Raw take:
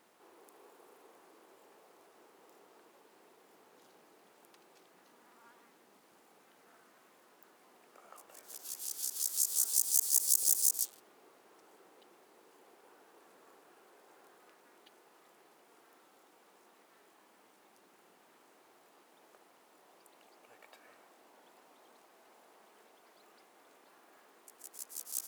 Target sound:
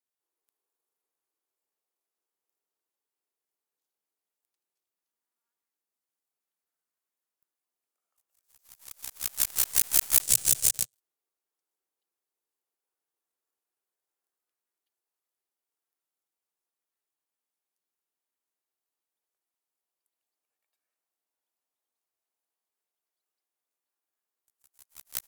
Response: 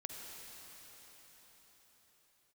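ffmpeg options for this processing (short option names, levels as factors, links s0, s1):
-filter_complex "[0:a]crystalizer=i=6.5:c=0,aeval=exprs='3.16*(cos(1*acos(clip(val(0)/3.16,-1,1)))-cos(1*PI/2))+0.0282*(cos(5*acos(clip(val(0)/3.16,-1,1)))-cos(5*PI/2))+0.0891*(cos(6*acos(clip(val(0)/3.16,-1,1)))-cos(6*PI/2))+0.447*(cos(7*acos(clip(val(0)/3.16,-1,1)))-cos(7*PI/2))':c=same,asettb=1/sr,asplit=3[s0][s1][s2];[s0]atrim=end=10.214[s3];[s1]atrim=start=10.21:end=10.94,asetpts=PTS-STARTPTS,afade=t=in:d=0.004:c=qsin,afade=t=out:st=0.726:d=0.004:c=qsin,equalizer=f=125:t=o:w=1:g=10,equalizer=f=250:t=o:w=1:g=-5,equalizer=f=500:t=o:w=1:g=4,equalizer=f=1000:t=o:w=1:g=-9,equalizer=f=2000:t=o:w=1:g=-3,equalizer=f=8000:t=o:w=1:g=6,equalizer=f=16000:t=o:w=1:g=-7[s4];[s2]atrim=start=10.936[s5];[s3][s4]acrossfade=d=0.004:c1=hsin:c2=qsin[s6];[s6][s5]acrossfade=d=0.004:c1=qsin:c2=hsin,volume=0.237"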